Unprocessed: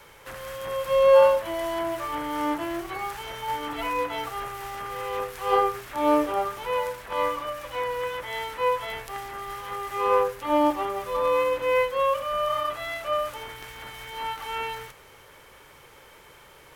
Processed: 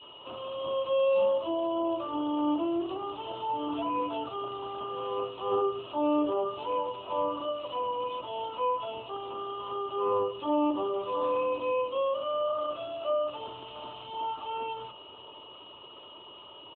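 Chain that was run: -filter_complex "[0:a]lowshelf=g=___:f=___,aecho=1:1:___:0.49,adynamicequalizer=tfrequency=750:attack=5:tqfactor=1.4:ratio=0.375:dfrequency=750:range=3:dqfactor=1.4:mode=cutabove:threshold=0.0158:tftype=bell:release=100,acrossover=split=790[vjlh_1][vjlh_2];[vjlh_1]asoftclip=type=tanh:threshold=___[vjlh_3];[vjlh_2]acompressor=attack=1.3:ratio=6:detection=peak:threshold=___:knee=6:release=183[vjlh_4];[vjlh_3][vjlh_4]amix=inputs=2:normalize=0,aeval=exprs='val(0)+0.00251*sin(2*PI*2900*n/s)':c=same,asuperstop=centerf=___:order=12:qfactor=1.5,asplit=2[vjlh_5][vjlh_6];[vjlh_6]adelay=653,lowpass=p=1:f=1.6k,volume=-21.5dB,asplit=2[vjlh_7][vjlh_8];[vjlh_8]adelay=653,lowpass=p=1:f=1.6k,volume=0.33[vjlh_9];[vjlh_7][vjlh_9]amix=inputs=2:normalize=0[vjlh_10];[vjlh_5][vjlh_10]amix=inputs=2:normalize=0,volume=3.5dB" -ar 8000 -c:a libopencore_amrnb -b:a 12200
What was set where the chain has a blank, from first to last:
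-9, 110, 3.1, -27dB, -38dB, 1800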